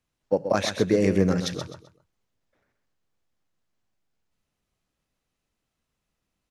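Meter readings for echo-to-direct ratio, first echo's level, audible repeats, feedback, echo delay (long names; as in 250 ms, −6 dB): −8.5 dB, −9.0 dB, 3, 28%, 129 ms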